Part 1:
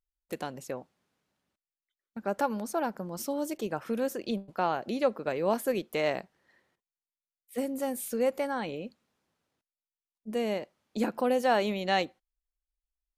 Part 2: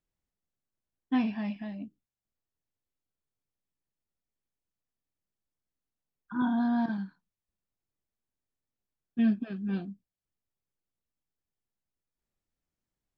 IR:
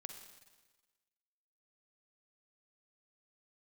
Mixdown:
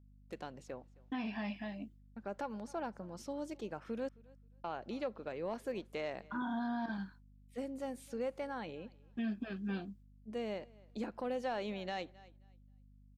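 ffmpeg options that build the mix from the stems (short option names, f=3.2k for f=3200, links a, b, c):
-filter_complex "[0:a]lowpass=5.9k,asoftclip=type=tanh:threshold=-14.5dB,volume=-9dB,asplit=3[a][b][c];[a]atrim=end=4.09,asetpts=PTS-STARTPTS,afade=t=out:st=4.086:d=0.004:c=hsin[d];[b]atrim=start=4.09:end=4.64,asetpts=PTS-STARTPTS,volume=0[e];[c]atrim=start=4.64,asetpts=PTS-STARTPTS,afade=t=in:d=0.004:c=hsin[f];[d][e][f]concat=n=3:v=0:a=1,asplit=2[g][h];[h]volume=-24dB[i];[1:a]agate=range=-33dB:threshold=-49dB:ratio=3:detection=peak,highpass=f=460:p=1,aeval=exprs='val(0)+0.000794*(sin(2*PI*50*n/s)+sin(2*PI*2*50*n/s)/2+sin(2*PI*3*50*n/s)/3+sin(2*PI*4*50*n/s)/4+sin(2*PI*5*50*n/s)/5)':c=same,volume=2dB[j];[i]aecho=0:1:265|530|795:1|0.19|0.0361[k];[g][j][k]amix=inputs=3:normalize=0,alimiter=level_in=5.5dB:limit=-24dB:level=0:latency=1:release=156,volume=-5.5dB"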